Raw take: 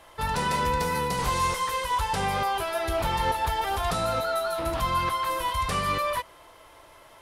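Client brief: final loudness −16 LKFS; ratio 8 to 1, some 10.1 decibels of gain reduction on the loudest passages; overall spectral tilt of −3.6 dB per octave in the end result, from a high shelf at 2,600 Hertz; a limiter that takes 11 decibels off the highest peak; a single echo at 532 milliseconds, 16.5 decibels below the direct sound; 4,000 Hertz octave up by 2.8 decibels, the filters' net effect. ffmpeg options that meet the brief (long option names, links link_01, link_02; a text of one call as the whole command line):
ffmpeg -i in.wav -af "highshelf=frequency=2600:gain=-3.5,equalizer=frequency=4000:width_type=o:gain=6.5,acompressor=threshold=-33dB:ratio=8,alimiter=level_in=10dB:limit=-24dB:level=0:latency=1,volume=-10dB,aecho=1:1:532:0.15,volume=26dB" out.wav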